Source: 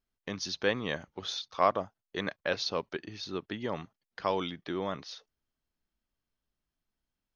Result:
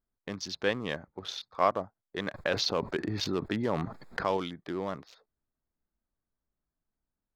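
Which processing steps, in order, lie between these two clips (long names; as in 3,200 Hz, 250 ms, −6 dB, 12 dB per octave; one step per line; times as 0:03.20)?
adaptive Wiener filter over 15 samples
0:02.34–0:04.37: envelope flattener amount 70%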